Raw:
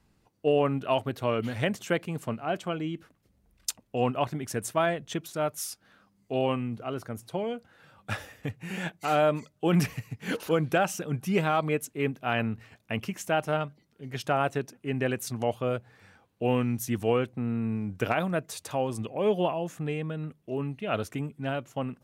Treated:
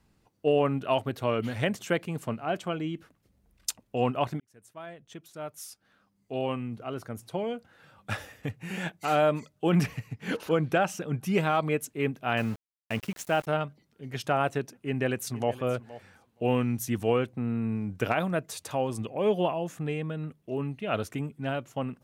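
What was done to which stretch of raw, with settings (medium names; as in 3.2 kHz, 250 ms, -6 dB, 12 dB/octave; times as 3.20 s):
4.40–7.47 s: fade in
9.69–11.23 s: treble shelf 5.9 kHz -7 dB
12.37–13.47 s: small samples zeroed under -40 dBFS
14.72–15.55 s: echo throw 470 ms, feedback 10%, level -17 dB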